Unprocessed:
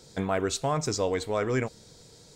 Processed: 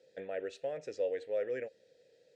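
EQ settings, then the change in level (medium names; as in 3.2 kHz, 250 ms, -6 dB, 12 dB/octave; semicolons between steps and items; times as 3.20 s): vowel filter e; 0.0 dB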